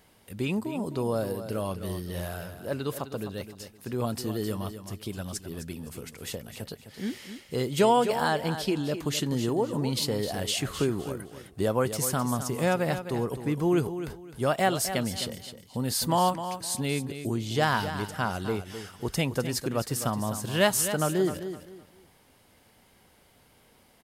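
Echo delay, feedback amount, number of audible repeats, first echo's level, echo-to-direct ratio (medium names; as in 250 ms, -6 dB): 258 ms, 26%, 3, -10.5 dB, -10.0 dB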